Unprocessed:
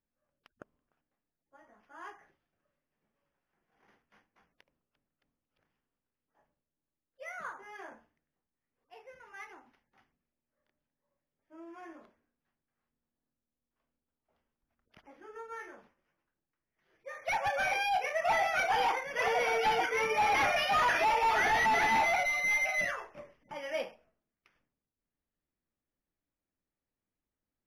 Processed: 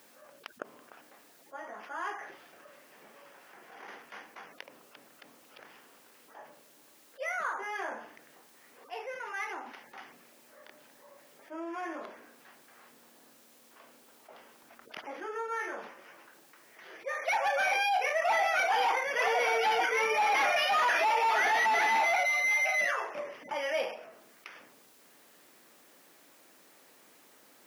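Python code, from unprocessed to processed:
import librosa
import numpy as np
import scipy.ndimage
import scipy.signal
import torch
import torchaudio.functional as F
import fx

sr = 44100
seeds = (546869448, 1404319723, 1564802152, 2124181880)

y = scipy.signal.sosfilt(scipy.signal.butter(2, 390.0, 'highpass', fs=sr, output='sos'), x)
y = fx.env_flatten(y, sr, amount_pct=50)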